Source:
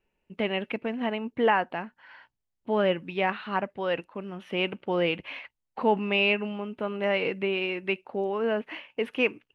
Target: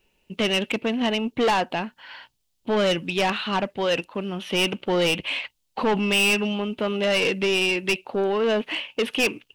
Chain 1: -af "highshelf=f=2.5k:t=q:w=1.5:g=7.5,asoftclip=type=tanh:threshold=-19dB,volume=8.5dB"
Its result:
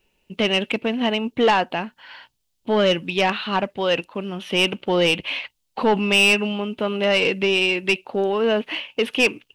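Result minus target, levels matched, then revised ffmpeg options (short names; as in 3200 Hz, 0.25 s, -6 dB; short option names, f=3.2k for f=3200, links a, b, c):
soft clip: distortion -5 dB
-af "highshelf=f=2.5k:t=q:w=1.5:g=7.5,asoftclip=type=tanh:threshold=-25.5dB,volume=8.5dB"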